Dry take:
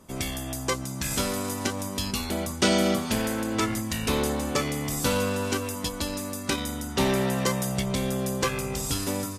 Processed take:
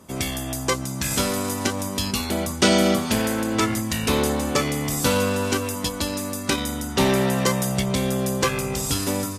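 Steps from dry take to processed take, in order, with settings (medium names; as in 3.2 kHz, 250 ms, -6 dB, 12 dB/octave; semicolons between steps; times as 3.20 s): high-pass 51 Hz; trim +4.5 dB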